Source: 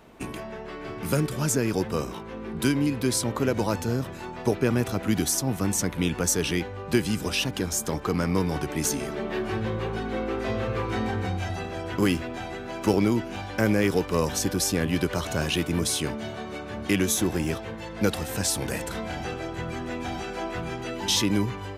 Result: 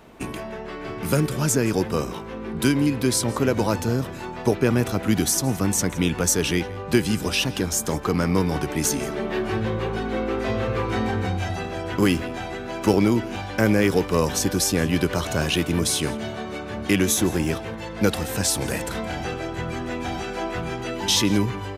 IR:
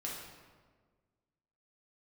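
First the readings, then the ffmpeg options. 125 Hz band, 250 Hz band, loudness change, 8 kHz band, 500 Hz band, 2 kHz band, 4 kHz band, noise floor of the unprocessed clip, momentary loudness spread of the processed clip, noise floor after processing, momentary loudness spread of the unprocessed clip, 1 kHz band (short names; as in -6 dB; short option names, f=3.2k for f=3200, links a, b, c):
+3.5 dB, +3.5 dB, +3.5 dB, +3.5 dB, +3.5 dB, +3.5 dB, +3.5 dB, -38 dBFS, 10 LU, -34 dBFS, 10 LU, +3.5 dB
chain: -af "aecho=1:1:168:0.0944,volume=3.5dB"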